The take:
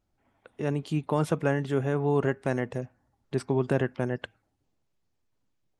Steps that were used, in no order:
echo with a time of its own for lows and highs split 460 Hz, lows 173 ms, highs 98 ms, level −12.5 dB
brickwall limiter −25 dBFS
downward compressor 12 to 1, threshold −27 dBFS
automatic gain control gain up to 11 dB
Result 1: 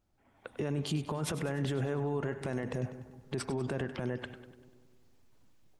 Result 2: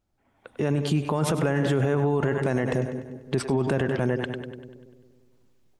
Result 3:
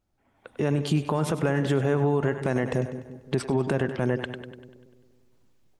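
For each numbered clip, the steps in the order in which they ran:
downward compressor, then automatic gain control, then brickwall limiter, then echo with a time of its own for lows and highs
echo with a time of its own for lows and highs, then brickwall limiter, then downward compressor, then automatic gain control
downward compressor, then echo with a time of its own for lows and highs, then brickwall limiter, then automatic gain control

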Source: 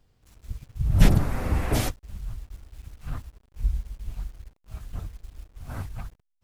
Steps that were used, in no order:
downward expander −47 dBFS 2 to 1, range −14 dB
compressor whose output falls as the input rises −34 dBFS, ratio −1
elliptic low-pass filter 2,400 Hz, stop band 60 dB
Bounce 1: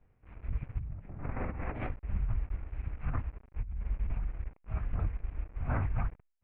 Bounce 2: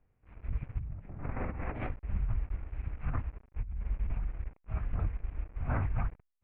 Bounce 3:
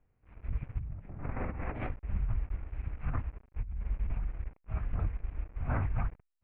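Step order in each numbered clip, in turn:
elliptic low-pass filter, then compressor whose output falls as the input rises, then downward expander
downward expander, then elliptic low-pass filter, then compressor whose output falls as the input rises
elliptic low-pass filter, then downward expander, then compressor whose output falls as the input rises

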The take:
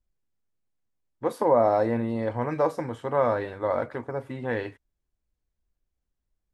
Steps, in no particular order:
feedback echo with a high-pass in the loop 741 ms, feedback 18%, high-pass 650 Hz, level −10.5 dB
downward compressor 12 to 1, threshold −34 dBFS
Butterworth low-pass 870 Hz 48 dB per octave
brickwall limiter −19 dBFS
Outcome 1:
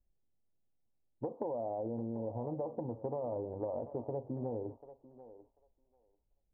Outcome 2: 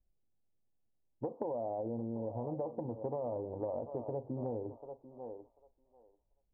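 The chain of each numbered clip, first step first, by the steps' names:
brickwall limiter, then Butterworth low-pass, then downward compressor, then feedback echo with a high-pass in the loop
Butterworth low-pass, then brickwall limiter, then feedback echo with a high-pass in the loop, then downward compressor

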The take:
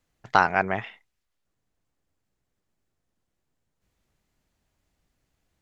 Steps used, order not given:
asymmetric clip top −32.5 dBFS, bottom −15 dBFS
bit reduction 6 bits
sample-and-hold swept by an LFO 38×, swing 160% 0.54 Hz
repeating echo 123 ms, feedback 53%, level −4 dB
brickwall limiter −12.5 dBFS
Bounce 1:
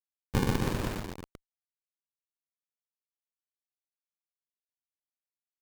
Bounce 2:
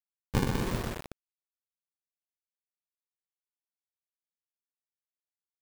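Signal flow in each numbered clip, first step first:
sample-and-hold swept by an LFO, then repeating echo, then bit reduction, then brickwall limiter, then asymmetric clip
sample-and-hold swept by an LFO, then brickwall limiter, then asymmetric clip, then repeating echo, then bit reduction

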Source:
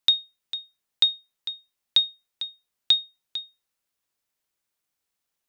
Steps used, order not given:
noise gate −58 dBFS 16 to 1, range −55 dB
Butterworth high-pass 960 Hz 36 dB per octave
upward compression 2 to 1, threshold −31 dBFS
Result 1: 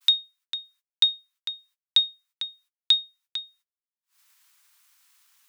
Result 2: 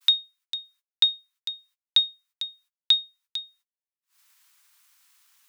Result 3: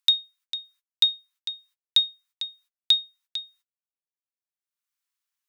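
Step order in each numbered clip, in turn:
Butterworth high-pass, then upward compression, then noise gate
upward compression, then noise gate, then Butterworth high-pass
noise gate, then Butterworth high-pass, then upward compression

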